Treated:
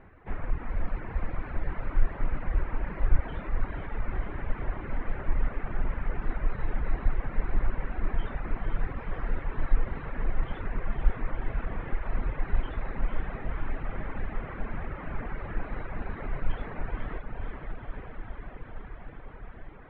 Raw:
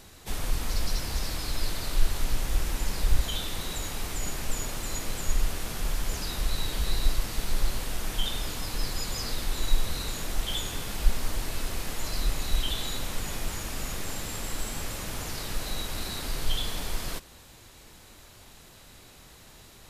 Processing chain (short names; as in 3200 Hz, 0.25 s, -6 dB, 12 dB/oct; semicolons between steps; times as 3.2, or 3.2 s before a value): steep low-pass 2100 Hz 36 dB/oct; diffused feedback echo 0.508 s, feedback 79%, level -5 dB; reverb removal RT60 0.93 s